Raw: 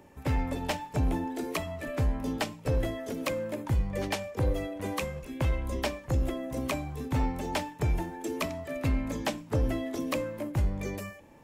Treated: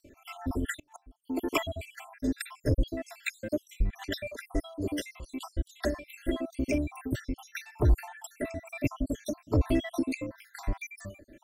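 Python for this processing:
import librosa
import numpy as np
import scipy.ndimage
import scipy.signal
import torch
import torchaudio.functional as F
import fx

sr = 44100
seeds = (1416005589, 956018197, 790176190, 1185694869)

p1 = fx.spec_dropout(x, sr, seeds[0], share_pct=69)
p2 = p1 + 0.65 * np.pad(p1, (int(3.0 * sr / 1000.0), 0))[:len(p1)]
p3 = fx.rotary(p2, sr, hz=1.1)
p4 = fx.gate_flip(p3, sr, shuts_db=-39.0, range_db=-28, at=(0.77, 1.24))
p5 = 10.0 ** (-33.5 / 20.0) * np.tanh(p4 / 10.0 ** (-33.5 / 20.0))
p6 = p4 + (p5 * librosa.db_to_amplitude(-11.5))
y = p6 * librosa.db_to_amplitude(3.5)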